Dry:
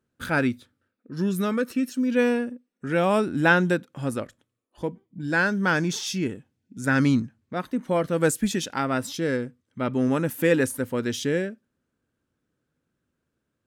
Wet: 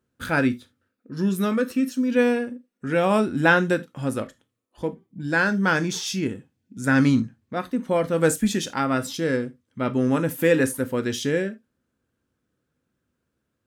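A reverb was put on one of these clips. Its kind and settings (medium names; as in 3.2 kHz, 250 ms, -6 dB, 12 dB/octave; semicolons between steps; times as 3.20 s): gated-style reverb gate 100 ms falling, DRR 10 dB; trim +1 dB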